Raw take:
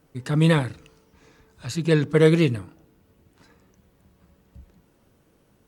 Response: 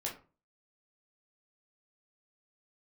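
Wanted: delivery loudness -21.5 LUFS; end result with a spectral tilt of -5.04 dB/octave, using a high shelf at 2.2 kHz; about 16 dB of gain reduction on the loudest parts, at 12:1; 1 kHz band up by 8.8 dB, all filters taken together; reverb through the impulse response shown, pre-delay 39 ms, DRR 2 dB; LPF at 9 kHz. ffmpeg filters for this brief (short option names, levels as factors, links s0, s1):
-filter_complex "[0:a]lowpass=9000,equalizer=f=1000:t=o:g=9,highshelf=f=2200:g=7.5,acompressor=threshold=0.0501:ratio=12,asplit=2[s0][s1];[1:a]atrim=start_sample=2205,adelay=39[s2];[s1][s2]afir=irnorm=-1:irlink=0,volume=0.668[s3];[s0][s3]amix=inputs=2:normalize=0,volume=2.66"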